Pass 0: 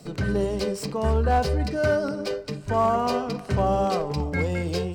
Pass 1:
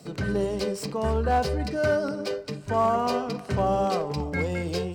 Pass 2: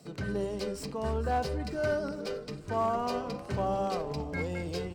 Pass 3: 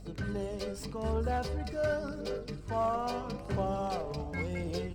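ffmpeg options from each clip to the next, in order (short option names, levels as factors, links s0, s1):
-af "highpass=f=91:p=1,volume=0.891"
-filter_complex "[0:a]asplit=7[s0][s1][s2][s3][s4][s5][s6];[s1]adelay=454,afreqshift=-140,volume=0.158[s7];[s2]adelay=908,afreqshift=-280,volume=0.0966[s8];[s3]adelay=1362,afreqshift=-420,volume=0.0589[s9];[s4]adelay=1816,afreqshift=-560,volume=0.0359[s10];[s5]adelay=2270,afreqshift=-700,volume=0.0219[s11];[s6]adelay=2724,afreqshift=-840,volume=0.0133[s12];[s0][s7][s8][s9][s10][s11][s12]amix=inputs=7:normalize=0,volume=0.473"
-af "aeval=exprs='val(0)+0.00447*(sin(2*PI*50*n/s)+sin(2*PI*2*50*n/s)/2+sin(2*PI*3*50*n/s)/3+sin(2*PI*4*50*n/s)/4+sin(2*PI*5*50*n/s)/5)':c=same,aphaser=in_gain=1:out_gain=1:delay=1.8:decay=0.28:speed=0.85:type=triangular,volume=0.75"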